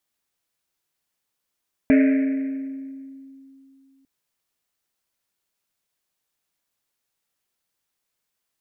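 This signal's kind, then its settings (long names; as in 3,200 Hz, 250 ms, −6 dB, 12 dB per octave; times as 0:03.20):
drum after Risset length 2.15 s, pitch 270 Hz, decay 2.91 s, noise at 2,000 Hz, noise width 830 Hz, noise 10%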